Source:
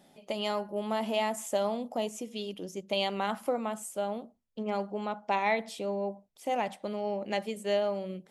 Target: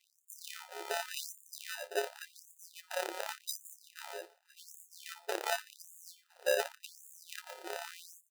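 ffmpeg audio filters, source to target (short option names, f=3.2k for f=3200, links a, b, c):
-filter_complex "[0:a]asettb=1/sr,asplit=3[a][b][c];[a]atrim=end=6.074[d];[b]atrim=start=6.07:end=6.56,asetpts=PTS-STARTPTS,afade=t=in:d=0.004:c=qsin,afade=t=out:st=0.486:d=0.004:c=qsin,lowshelf=f=360:g=6[e];[c]atrim=start=6.556[f];[d][e]acrossfade=d=0.004:c1=hsin:c2=qsin[g];[g][f]acrossfade=d=0.004:c1=qsin:c2=hsin,afftfilt=real='hypot(re,im)*cos(PI*b)':imag='0':win_size=1024:overlap=0.75,acrusher=samples=40:mix=1:aa=0.000001,aecho=1:1:505|1010|1515:0.0708|0.0347|0.017,afftfilt=real='re*gte(b*sr/1024,340*pow(6600/340,0.5+0.5*sin(2*PI*0.88*pts/sr)))':imag='im*gte(b*sr/1024,340*pow(6600/340,0.5+0.5*sin(2*PI*0.88*pts/sr)))':win_size=1024:overlap=0.75,volume=3dB"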